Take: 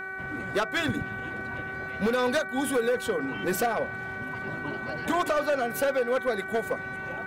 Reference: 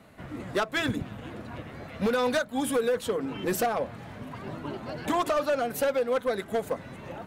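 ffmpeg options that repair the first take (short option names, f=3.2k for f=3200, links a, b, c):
-af "bandreject=f=382.2:t=h:w=4,bandreject=f=764.4:t=h:w=4,bandreject=f=1.1466k:t=h:w=4,bandreject=f=1.5288k:t=h:w=4,bandreject=f=1.911k:t=h:w=4,bandreject=f=2.2932k:t=h:w=4,bandreject=f=1.5k:w=30"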